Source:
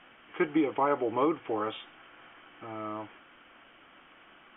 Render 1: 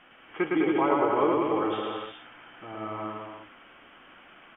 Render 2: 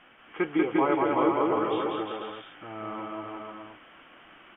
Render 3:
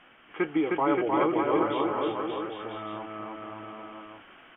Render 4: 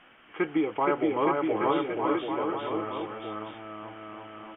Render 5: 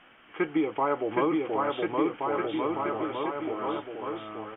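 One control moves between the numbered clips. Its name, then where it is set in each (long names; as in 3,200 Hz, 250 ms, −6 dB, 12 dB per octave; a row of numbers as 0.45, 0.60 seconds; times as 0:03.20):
bouncing-ball delay, first gap: 110, 190, 310, 470, 770 milliseconds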